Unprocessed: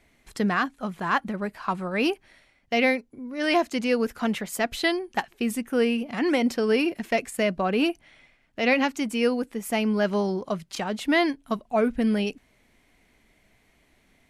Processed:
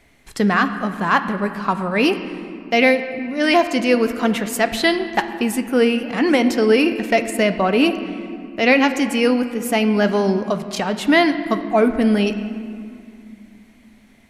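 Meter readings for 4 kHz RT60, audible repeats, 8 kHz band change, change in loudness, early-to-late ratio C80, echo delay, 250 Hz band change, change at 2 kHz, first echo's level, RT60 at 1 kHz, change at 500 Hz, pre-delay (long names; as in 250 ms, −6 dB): 1.5 s, no echo audible, +7.0 dB, +7.5 dB, 11.0 dB, no echo audible, +7.5 dB, +7.5 dB, no echo audible, 2.4 s, +7.5 dB, 7 ms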